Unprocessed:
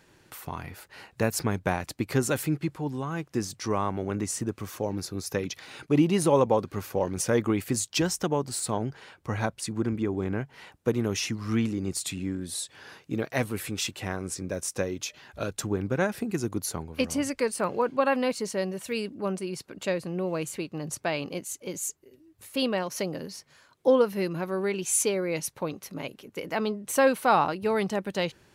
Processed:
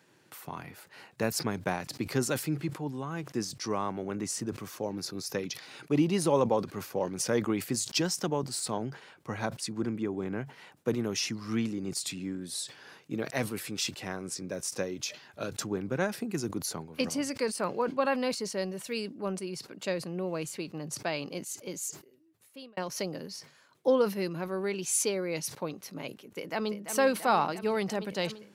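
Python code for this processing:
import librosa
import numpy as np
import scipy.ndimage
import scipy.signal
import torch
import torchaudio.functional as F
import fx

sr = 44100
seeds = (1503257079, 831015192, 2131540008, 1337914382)

y = fx.echo_throw(x, sr, start_s=26.27, length_s=0.63, ms=340, feedback_pct=80, wet_db=-9.5)
y = fx.edit(y, sr, fx.fade_out_span(start_s=21.76, length_s=1.01), tone=tone)
y = scipy.signal.sosfilt(scipy.signal.butter(4, 120.0, 'highpass', fs=sr, output='sos'), y)
y = fx.dynamic_eq(y, sr, hz=4900.0, q=2.3, threshold_db=-52.0, ratio=4.0, max_db=6)
y = fx.sustainer(y, sr, db_per_s=150.0)
y = F.gain(torch.from_numpy(y), -4.0).numpy()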